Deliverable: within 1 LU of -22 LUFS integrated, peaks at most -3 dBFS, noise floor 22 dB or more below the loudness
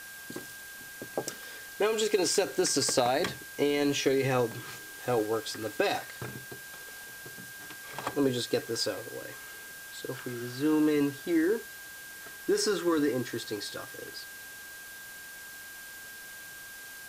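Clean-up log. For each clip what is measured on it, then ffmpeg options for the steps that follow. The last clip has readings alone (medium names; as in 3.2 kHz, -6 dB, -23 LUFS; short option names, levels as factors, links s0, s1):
steady tone 1.6 kHz; tone level -45 dBFS; noise floor -45 dBFS; noise floor target -52 dBFS; loudness -30.0 LUFS; peak level -14.5 dBFS; loudness target -22.0 LUFS
-> -af "bandreject=f=1600:w=30"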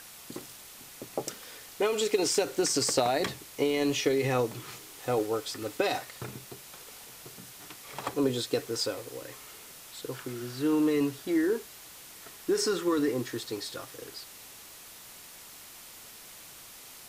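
steady tone not found; noise floor -49 dBFS; noise floor target -52 dBFS
-> -af "afftdn=nr=6:nf=-49"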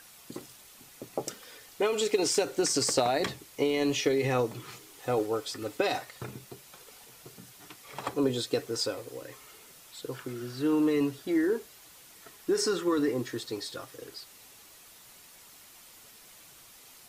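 noise floor -54 dBFS; loudness -29.5 LUFS; peak level -14.5 dBFS; loudness target -22.0 LUFS
-> -af "volume=2.37"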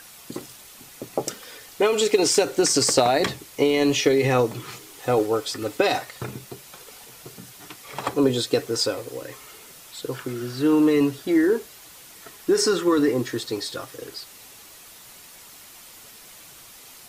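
loudness -22.0 LUFS; peak level -7.0 dBFS; noise floor -46 dBFS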